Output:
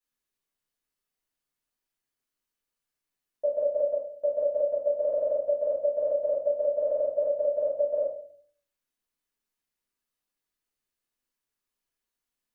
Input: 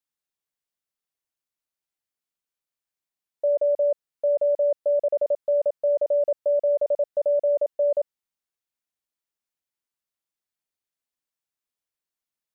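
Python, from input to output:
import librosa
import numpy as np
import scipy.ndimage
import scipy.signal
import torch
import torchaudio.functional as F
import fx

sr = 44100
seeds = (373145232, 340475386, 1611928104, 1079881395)

y = fx.room_shoebox(x, sr, seeds[0], volume_m3=50.0, walls='mixed', distance_m=1.8)
y = y * 10.0 ** (-6.0 / 20.0)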